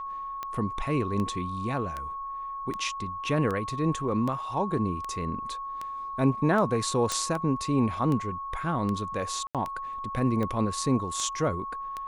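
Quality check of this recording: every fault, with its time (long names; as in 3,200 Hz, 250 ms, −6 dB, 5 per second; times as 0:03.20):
scratch tick 78 rpm −20 dBFS
whistle 1,100 Hz −33 dBFS
0:07.12: click −13 dBFS
0:09.47–0:09.55: drop-out 77 ms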